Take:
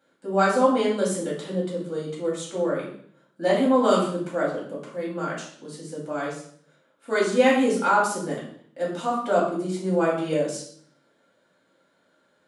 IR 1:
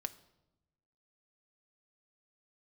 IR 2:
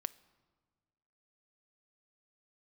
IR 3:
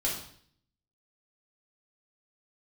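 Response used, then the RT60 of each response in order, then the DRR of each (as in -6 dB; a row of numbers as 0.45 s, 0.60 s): 3; 0.90 s, 1.5 s, 0.55 s; 7.0 dB, 14.0 dB, -5.5 dB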